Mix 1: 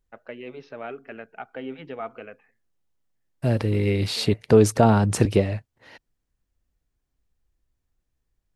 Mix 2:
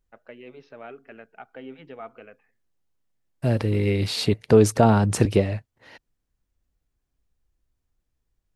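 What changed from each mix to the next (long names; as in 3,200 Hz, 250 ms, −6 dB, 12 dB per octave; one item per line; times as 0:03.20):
first voice −5.5 dB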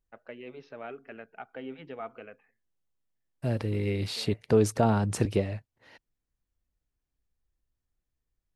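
second voice −7.0 dB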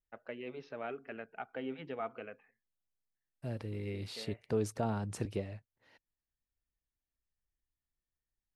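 second voice −10.5 dB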